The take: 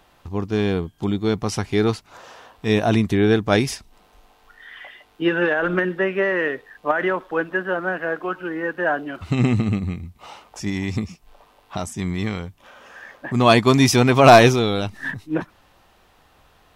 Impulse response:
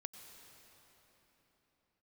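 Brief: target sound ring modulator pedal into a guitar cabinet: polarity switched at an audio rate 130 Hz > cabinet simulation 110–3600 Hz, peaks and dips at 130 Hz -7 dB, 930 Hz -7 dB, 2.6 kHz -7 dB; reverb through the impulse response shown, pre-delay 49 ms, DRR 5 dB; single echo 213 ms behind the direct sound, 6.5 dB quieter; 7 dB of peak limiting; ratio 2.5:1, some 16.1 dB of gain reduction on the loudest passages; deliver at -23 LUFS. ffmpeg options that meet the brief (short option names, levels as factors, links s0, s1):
-filter_complex "[0:a]acompressor=threshold=0.0282:ratio=2.5,alimiter=limit=0.075:level=0:latency=1,aecho=1:1:213:0.473,asplit=2[s0][s1];[1:a]atrim=start_sample=2205,adelay=49[s2];[s1][s2]afir=irnorm=-1:irlink=0,volume=0.891[s3];[s0][s3]amix=inputs=2:normalize=0,aeval=exprs='val(0)*sgn(sin(2*PI*130*n/s))':c=same,highpass=110,equalizer=f=130:t=q:w=4:g=-7,equalizer=f=930:t=q:w=4:g=-7,equalizer=f=2600:t=q:w=4:g=-7,lowpass=f=3600:w=0.5412,lowpass=f=3600:w=1.3066,volume=3.35"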